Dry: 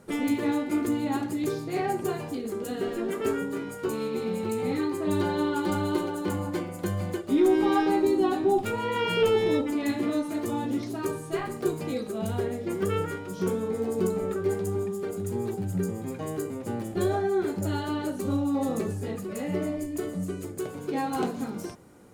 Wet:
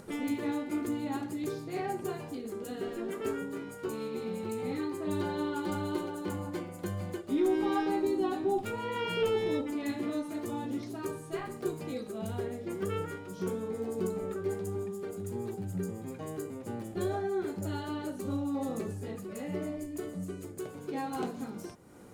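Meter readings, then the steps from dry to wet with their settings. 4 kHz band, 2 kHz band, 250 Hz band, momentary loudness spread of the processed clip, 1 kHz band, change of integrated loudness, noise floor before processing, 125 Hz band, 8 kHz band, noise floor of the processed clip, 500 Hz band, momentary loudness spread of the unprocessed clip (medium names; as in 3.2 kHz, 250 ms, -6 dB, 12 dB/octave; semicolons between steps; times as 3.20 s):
-6.5 dB, -6.5 dB, -6.5 dB, 9 LU, -6.5 dB, -6.5 dB, -39 dBFS, -6.5 dB, -6.5 dB, -45 dBFS, -6.5 dB, 9 LU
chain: upward compressor, threshold -36 dBFS; trim -6.5 dB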